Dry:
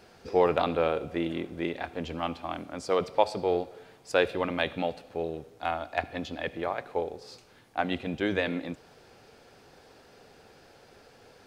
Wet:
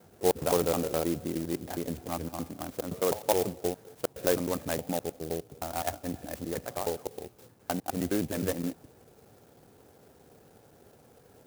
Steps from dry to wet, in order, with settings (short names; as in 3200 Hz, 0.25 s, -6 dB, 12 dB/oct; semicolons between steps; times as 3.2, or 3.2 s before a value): slices in reverse order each 0.104 s, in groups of 2; HPF 82 Hz; tilt -2.5 dB/oct; clock jitter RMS 0.093 ms; gain -4 dB